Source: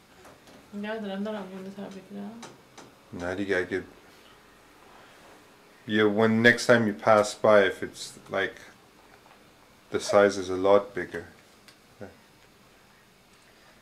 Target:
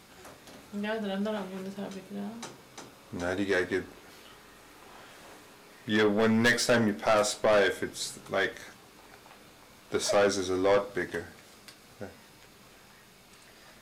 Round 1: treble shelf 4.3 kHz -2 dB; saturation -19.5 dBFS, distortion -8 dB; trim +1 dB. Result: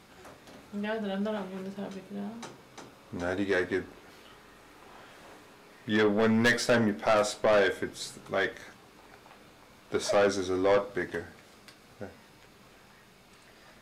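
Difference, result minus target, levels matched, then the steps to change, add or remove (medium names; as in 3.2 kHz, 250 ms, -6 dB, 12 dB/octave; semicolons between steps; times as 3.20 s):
8 kHz band -4.0 dB
change: treble shelf 4.3 kHz +4.5 dB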